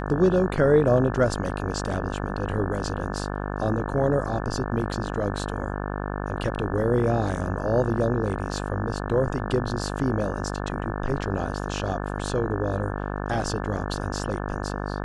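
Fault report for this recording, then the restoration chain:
buzz 50 Hz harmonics 35 -30 dBFS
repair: de-hum 50 Hz, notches 35

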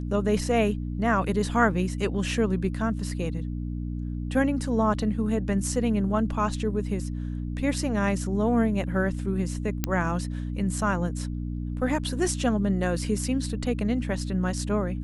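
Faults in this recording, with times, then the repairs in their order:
hum 60 Hz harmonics 5 -31 dBFS
9.84 s: pop -9 dBFS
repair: de-click; de-hum 60 Hz, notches 5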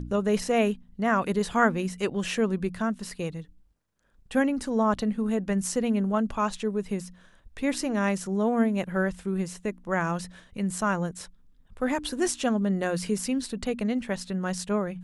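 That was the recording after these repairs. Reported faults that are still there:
nothing left

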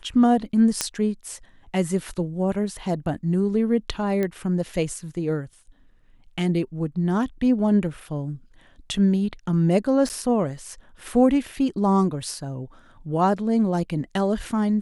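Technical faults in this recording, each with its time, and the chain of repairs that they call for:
0.81 s: pop -6 dBFS
4.23 s: pop -14 dBFS
10.09–10.10 s: dropout 9.1 ms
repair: de-click; interpolate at 10.09 s, 9.1 ms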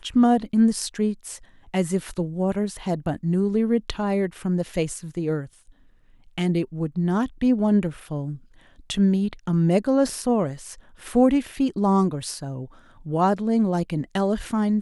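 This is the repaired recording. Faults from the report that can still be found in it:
0.81 s: pop

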